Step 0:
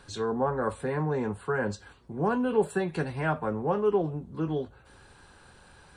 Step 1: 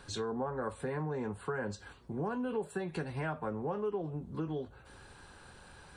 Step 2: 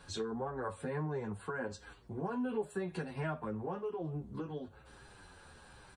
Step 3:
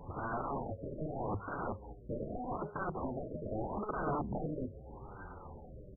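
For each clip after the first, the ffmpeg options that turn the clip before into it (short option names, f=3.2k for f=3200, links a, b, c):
-af "acompressor=threshold=-34dB:ratio=4"
-filter_complex "[0:a]asplit=2[a][b];[b]adelay=8.6,afreqshift=-1.3[c];[a][c]amix=inputs=2:normalize=1,volume=1dB"
-af "aeval=exprs='(mod(84.1*val(0)+1,2)-1)/84.1':c=same,afftfilt=real='re*lt(b*sr/1024,630*pow(1600/630,0.5+0.5*sin(2*PI*0.81*pts/sr)))':imag='im*lt(b*sr/1024,630*pow(1600/630,0.5+0.5*sin(2*PI*0.81*pts/sr)))':win_size=1024:overlap=0.75,volume=9.5dB"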